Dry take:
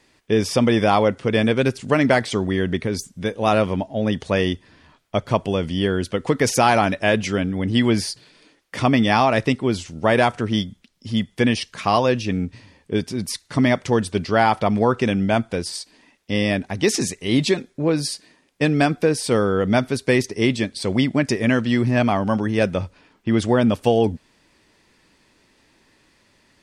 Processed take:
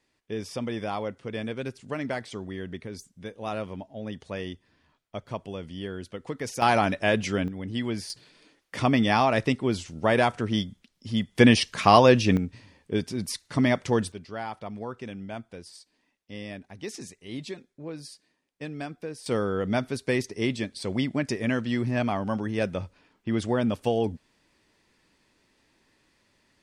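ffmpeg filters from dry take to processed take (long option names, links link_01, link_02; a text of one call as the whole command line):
ffmpeg -i in.wav -af "asetnsamples=nb_out_samples=441:pad=0,asendcmd='6.62 volume volume -5dB;7.48 volume volume -12dB;8.1 volume volume -5dB;11.35 volume volume 2dB;12.37 volume volume -5dB;14.12 volume volume -18dB;19.26 volume volume -8dB',volume=-14.5dB" out.wav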